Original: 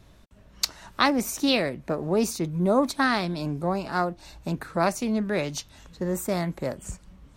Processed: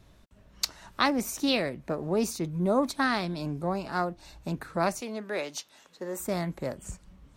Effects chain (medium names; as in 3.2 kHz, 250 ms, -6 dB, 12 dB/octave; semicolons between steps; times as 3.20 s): 5.01–6.20 s: high-pass 370 Hz 12 dB/octave; trim -3.5 dB